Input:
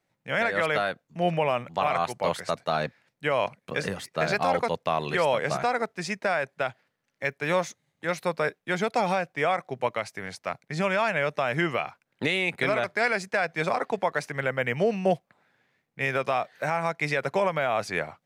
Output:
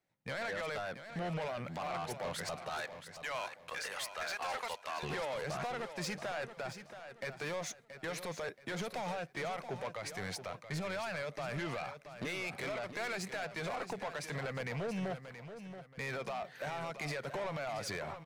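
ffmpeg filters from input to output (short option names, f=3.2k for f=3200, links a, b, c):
-filter_complex "[0:a]agate=range=-11dB:threshold=-51dB:ratio=16:detection=peak,asettb=1/sr,asplit=3[a][b][c];[a]atrim=end=2.694[d];[b]atrim=start=2.69:end=5.03,asetpts=PTS-STARTPTS,afade=t=in:d=0.004:c=qsin,afade=t=out:st=2.336:d=0.004:c=qsin,highpass=970[e];[c]atrim=start=5.026[f];[d][e]acrossfade=d=0.004:c1=hsin:c2=qsin[g];[g][f]acrossfade=d=0.004:c1=qsin:c2=hsin,acompressor=threshold=-26dB:ratio=6,alimiter=level_in=2dB:limit=-24dB:level=0:latency=1:release=90,volume=-2dB,asoftclip=type=tanh:threshold=-37.5dB,aecho=1:1:677|1354|2031:0.299|0.0955|0.0306,volume=3dB"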